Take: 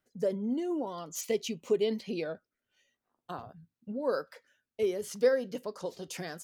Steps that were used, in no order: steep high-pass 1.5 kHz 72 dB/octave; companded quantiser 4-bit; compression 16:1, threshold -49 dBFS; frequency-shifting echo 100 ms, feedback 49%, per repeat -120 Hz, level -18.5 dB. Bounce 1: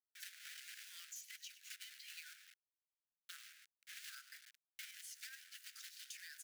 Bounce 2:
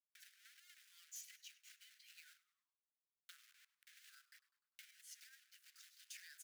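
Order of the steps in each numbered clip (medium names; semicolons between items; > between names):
frequency-shifting echo > companded quantiser > steep high-pass > compression; companded quantiser > compression > steep high-pass > frequency-shifting echo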